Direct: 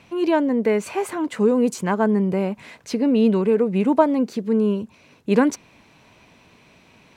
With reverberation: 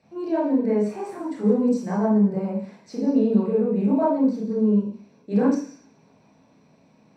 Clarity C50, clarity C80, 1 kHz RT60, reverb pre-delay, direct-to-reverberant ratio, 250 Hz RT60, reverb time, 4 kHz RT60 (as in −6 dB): 2.5 dB, 8.0 dB, 0.50 s, 24 ms, −7.0 dB, 0.50 s, 0.50 s, 0.85 s